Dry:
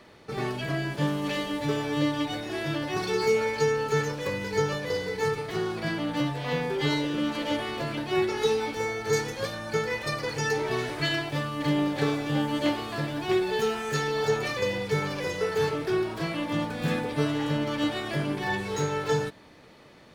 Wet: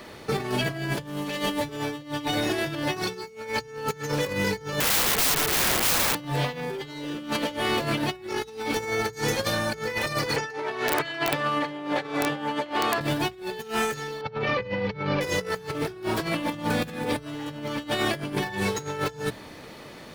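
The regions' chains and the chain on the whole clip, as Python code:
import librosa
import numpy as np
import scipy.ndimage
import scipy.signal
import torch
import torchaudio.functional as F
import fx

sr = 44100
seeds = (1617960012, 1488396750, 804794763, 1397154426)

y = fx.chain(x, sr, fx.lowpass(hz=3700.0, slope=12),
    fx.overflow_wrap(gain_db=30.0), at=(4.8, 6.15))
y = fx.chain(y, sr, fx.bandpass_q(hz=1100.0, q=0.53),
    fx.over_compress(threshold_db=-36.0, ratio=-0.5),
    fx.overflow_wrap(gain_db=23.5), at=(10.36, 13.01))
y = fx.chain(y, sr, fx.bessel_lowpass(hz=2800.0, order=6),
    fx.notch_comb(f0_hz=350.0), at=(14.21, 15.21))
y = fx.over_compress(y, sr, threshold_db=-33.0, ratio=-0.5)
y = fx.high_shelf(y, sr, hz=10000.0, db=10.0)
y = fx.hum_notches(y, sr, base_hz=60, count=3)
y = y * librosa.db_to_amplitude(5.0)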